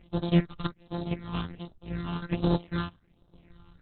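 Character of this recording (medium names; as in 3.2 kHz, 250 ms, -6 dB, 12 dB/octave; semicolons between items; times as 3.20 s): a buzz of ramps at a fixed pitch in blocks of 256 samples; chopped level 0.9 Hz, depth 65%, duty 60%; phasing stages 6, 1.3 Hz, lowest notch 510–2200 Hz; Opus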